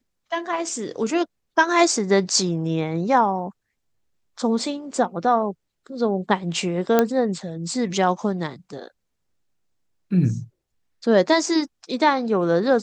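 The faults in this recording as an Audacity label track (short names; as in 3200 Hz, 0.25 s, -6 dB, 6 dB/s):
6.990000	6.990000	pop -4 dBFS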